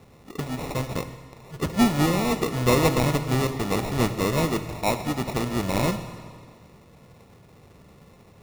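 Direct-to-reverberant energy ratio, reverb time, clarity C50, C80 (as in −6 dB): 8.5 dB, 1.9 s, 10.0 dB, 11.0 dB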